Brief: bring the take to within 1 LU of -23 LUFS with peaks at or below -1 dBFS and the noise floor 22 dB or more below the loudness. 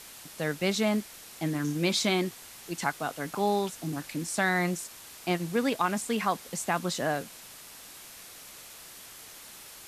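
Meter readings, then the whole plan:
noise floor -48 dBFS; noise floor target -52 dBFS; loudness -30.0 LUFS; peak -12.0 dBFS; loudness target -23.0 LUFS
-> denoiser 6 dB, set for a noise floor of -48 dBFS; gain +7 dB

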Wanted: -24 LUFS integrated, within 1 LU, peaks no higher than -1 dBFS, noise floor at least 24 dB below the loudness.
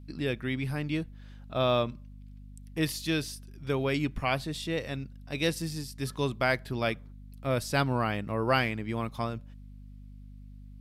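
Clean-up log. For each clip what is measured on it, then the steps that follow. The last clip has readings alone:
hum 50 Hz; harmonics up to 250 Hz; hum level -45 dBFS; loudness -31.0 LUFS; peak -13.0 dBFS; loudness target -24.0 LUFS
-> de-hum 50 Hz, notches 5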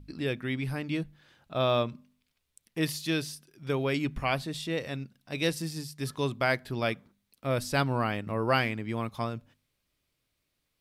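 hum none; loudness -31.0 LUFS; peak -13.0 dBFS; loudness target -24.0 LUFS
-> gain +7 dB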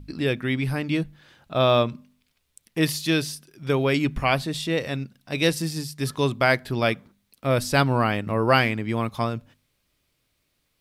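loudness -24.0 LUFS; peak -6.0 dBFS; noise floor -73 dBFS

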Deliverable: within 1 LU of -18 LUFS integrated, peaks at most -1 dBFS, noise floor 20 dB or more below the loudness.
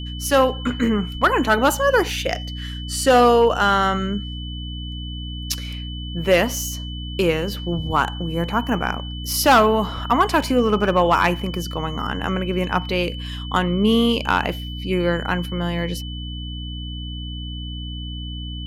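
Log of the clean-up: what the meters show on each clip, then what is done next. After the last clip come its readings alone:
hum 60 Hz; harmonics up to 300 Hz; hum level -28 dBFS; steady tone 3000 Hz; tone level -35 dBFS; loudness -21.0 LUFS; peak -6.0 dBFS; loudness target -18.0 LUFS
-> de-hum 60 Hz, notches 5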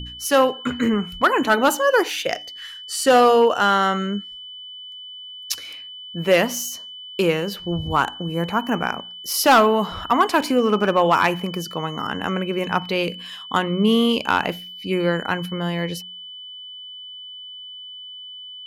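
hum none; steady tone 3000 Hz; tone level -35 dBFS
-> notch 3000 Hz, Q 30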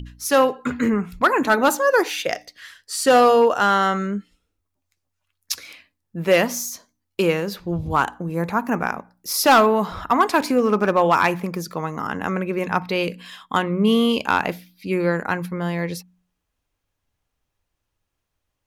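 steady tone none; loudness -20.5 LUFS; peak -6.0 dBFS; loudness target -18.0 LUFS
-> gain +2.5 dB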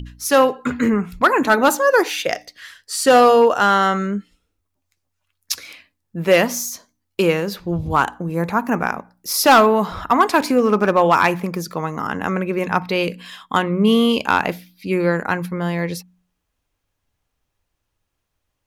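loudness -18.0 LUFS; peak -3.5 dBFS; noise floor -76 dBFS

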